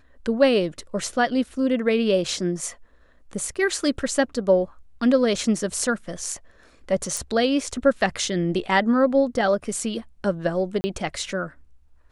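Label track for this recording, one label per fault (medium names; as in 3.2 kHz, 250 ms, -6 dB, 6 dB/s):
7.170000	7.170000	pop
10.810000	10.840000	dropout 30 ms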